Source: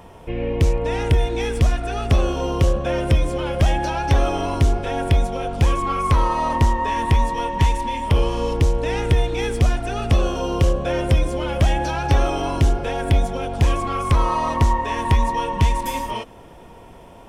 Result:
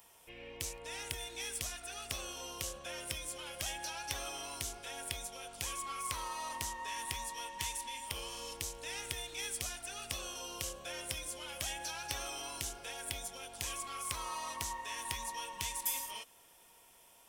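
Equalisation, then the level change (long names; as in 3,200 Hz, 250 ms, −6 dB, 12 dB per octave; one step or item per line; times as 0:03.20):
first-order pre-emphasis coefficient 0.97
high-shelf EQ 8,100 Hz +5 dB
−3.0 dB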